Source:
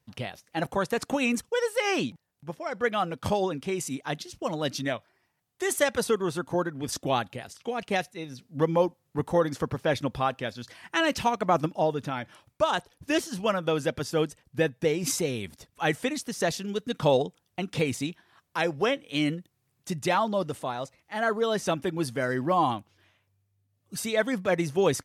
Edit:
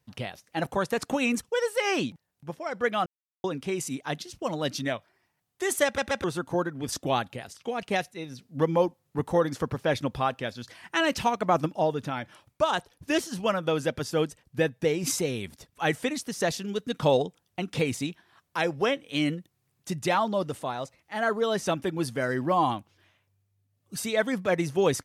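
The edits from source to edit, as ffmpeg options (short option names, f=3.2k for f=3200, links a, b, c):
-filter_complex "[0:a]asplit=6[a][b][c][d][e][f];[a]atrim=end=3.06,asetpts=PTS-STARTPTS,afade=t=out:st=3.056:d=0.004:c=hsin[g];[b]atrim=start=3.06:end=3.44,asetpts=PTS-STARTPTS,volume=0[h];[c]atrim=start=3.44:end=5.982,asetpts=PTS-STARTPTS,afade=t=in:d=0.004:c=hsin[i];[d]atrim=start=5.848:end=5.982[j];[e]atrim=start=5.848:end=5.982[k];[f]atrim=start=6.238[l];[g][h][i]concat=n=3:v=0:a=1[m];[m][j]acrossfade=d=0.004:c1=hsin:c2=hsin[n];[n][k]acrossfade=d=0.004:c1=hsin:c2=hsin[o];[o][l]acrossfade=d=0.004:c1=hsin:c2=hsin"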